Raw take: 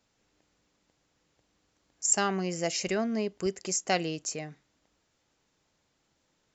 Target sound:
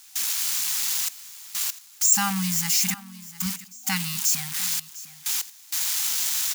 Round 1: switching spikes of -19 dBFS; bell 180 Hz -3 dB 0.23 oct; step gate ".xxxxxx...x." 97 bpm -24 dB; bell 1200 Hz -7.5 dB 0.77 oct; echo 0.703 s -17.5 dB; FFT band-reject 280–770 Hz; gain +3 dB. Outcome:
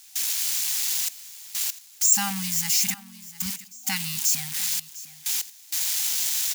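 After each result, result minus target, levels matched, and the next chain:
250 Hz band -5.0 dB; 1000 Hz band -3.5 dB
switching spikes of -19 dBFS; bell 180 Hz +4.5 dB 0.23 oct; step gate ".xxxxxx...x." 97 bpm -24 dB; bell 1200 Hz -7.5 dB 0.77 oct; echo 0.703 s -17.5 dB; FFT band-reject 280–770 Hz; gain +3 dB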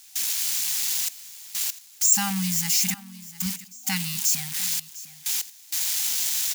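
1000 Hz band -3.5 dB
switching spikes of -19 dBFS; bell 180 Hz +4.5 dB 0.23 oct; step gate ".xxxxxx...x." 97 bpm -24 dB; echo 0.703 s -17.5 dB; FFT band-reject 280–770 Hz; gain +3 dB

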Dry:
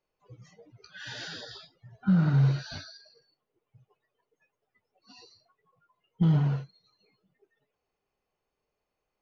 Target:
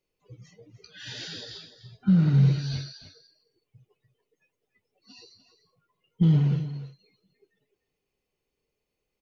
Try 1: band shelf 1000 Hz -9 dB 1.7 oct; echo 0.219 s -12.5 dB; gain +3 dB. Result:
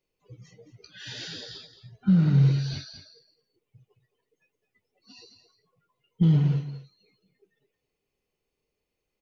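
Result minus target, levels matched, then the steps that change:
echo 78 ms early
change: echo 0.297 s -12.5 dB

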